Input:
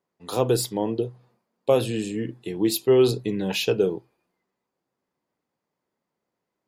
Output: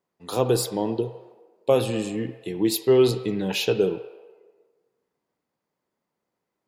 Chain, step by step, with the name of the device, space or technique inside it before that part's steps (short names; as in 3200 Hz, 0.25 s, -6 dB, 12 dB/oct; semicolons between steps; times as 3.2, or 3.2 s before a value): filtered reverb send (on a send: HPF 490 Hz 24 dB/oct + LPF 3100 Hz 12 dB/oct + reverb RT60 1.4 s, pre-delay 58 ms, DRR 10.5 dB)